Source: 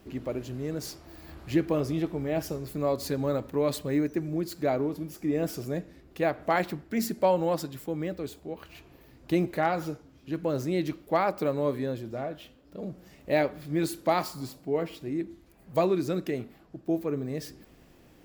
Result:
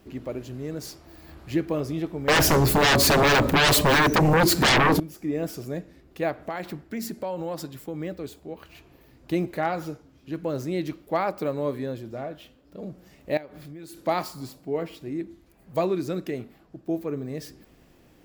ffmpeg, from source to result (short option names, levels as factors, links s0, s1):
-filter_complex "[0:a]asettb=1/sr,asplit=3[s0][s1][s2];[s0]atrim=end=2.284[s3];[s1]atrim=start=2.28:end=5,asetpts=PTS-STARTPTS,afade=t=in:d=0.004:c=qsin,afade=t=out:st=2.716:d=0.004:c=qsin,aeval=exprs='0.178*sin(PI/2*7.94*val(0)/0.178)':c=same[s4];[s2]atrim=start=4.996[s5];[s3][s4]acrossfade=d=0.004:c1=hsin:c2=qsin[s6];[s6][s5]acrossfade=d=0.004:c1=qsin:c2=hsin,asettb=1/sr,asplit=3[s7][s8][s9];[s7]atrim=end=6.474[s10];[s8]atrim=start=6.47:end=8,asetpts=PTS-STARTPTS,afade=t=in:d=0.004:c=qsin,afade=t=out:st=1.526:d=0.004:c=qsin,acompressor=threshold=0.0447:ratio=6:attack=3.2:release=140:knee=1:detection=peak[s11];[s9]atrim=start=7.996[s12];[s10][s11]acrossfade=d=0.004:c1=hsin:c2=qsin[s13];[s13][s12]acrossfade=d=0.004:c1=qsin:c2=hsin,asettb=1/sr,asplit=3[s14][s15][s16];[s14]atrim=end=13.374[s17];[s15]atrim=start=13.37:end=13.97,asetpts=PTS-STARTPTS,afade=t=in:d=0.004:c=qsin,afade=t=out:st=0.596:d=0.004:c=qsin,acompressor=threshold=0.0126:ratio=8:attack=3.2:release=140:knee=1:detection=peak[s18];[s16]atrim=start=13.966[s19];[s17][s18]acrossfade=d=0.004:c1=hsin:c2=qsin[s20];[s20][s19]acrossfade=d=0.004:c1=qsin:c2=hsin"